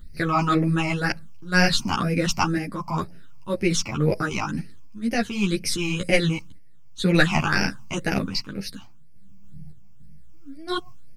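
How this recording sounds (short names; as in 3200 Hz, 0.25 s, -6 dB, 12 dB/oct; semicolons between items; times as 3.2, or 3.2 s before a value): a quantiser's noise floor 12-bit, dither none; phasing stages 8, 2 Hz, lowest notch 480–1100 Hz; random-step tremolo; a shimmering, thickened sound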